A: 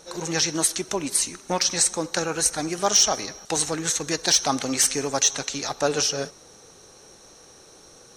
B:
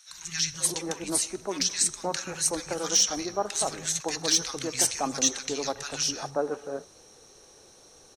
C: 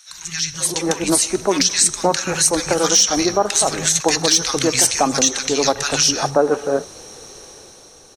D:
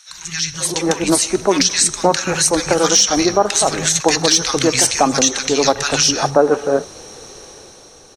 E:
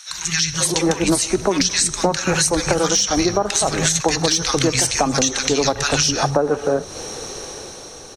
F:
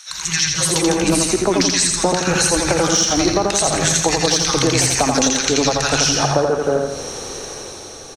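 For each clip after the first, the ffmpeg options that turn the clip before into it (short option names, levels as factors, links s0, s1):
-filter_complex "[0:a]acrossover=split=180|1400[s0][s1][s2];[s0]adelay=100[s3];[s1]adelay=540[s4];[s3][s4][s2]amix=inputs=3:normalize=0,volume=0.631"
-af "alimiter=limit=0.106:level=0:latency=1:release=207,dynaudnorm=f=120:g=13:m=2.37,volume=2.51"
-af "highshelf=f=9400:g=-8.5,volume=1.41"
-filter_complex "[0:a]acrossover=split=140[s0][s1];[s1]acompressor=threshold=0.0794:ratio=5[s2];[s0][s2]amix=inputs=2:normalize=0,volume=2"
-af "aecho=1:1:84|168|252|336|420|504:0.668|0.321|0.154|0.0739|0.0355|0.017"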